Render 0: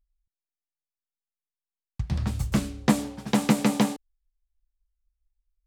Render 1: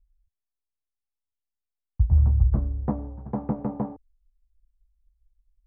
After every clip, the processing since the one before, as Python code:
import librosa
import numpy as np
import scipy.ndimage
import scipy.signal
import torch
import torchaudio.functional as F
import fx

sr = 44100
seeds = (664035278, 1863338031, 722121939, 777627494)

y = scipy.signal.sosfilt(scipy.signal.butter(4, 1000.0, 'lowpass', fs=sr, output='sos'), x)
y = fx.low_shelf_res(y, sr, hz=120.0, db=13.5, q=1.5)
y = y * 10.0 ** (-4.5 / 20.0)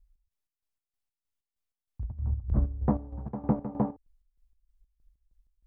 y = fx.over_compress(x, sr, threshold_db=-22.0, ratio=-0.5)
y = fx.chopper(y, sr, hz=3.2, depth_pct=65, duty_pct=50)
y = y * 10.0 ** (-1.5 / 20.0)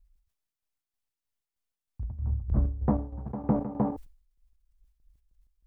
y = fx.sustainer(x, sr, db_per_s=110.0)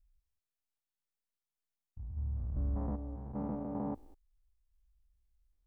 y = fx.spec_steps(x, sr, hold_ms=200)
y = y * 10.0 ** (-5.5 / 20.0)